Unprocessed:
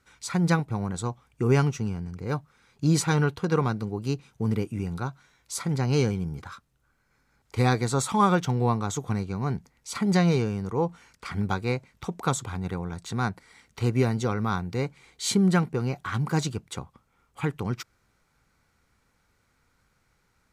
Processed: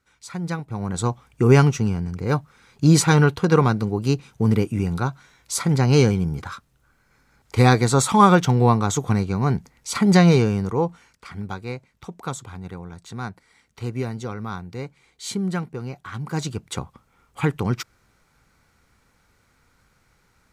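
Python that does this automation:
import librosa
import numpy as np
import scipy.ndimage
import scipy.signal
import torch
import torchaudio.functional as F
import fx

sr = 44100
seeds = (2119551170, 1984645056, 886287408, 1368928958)

y = fx.gain(x, sr, db=fx.line((0.57, -5.0), (1.03, 7.5), (10.6, 7.5), (11.29, -4.0), (16.2, -4.0), (16.76, 6.5)))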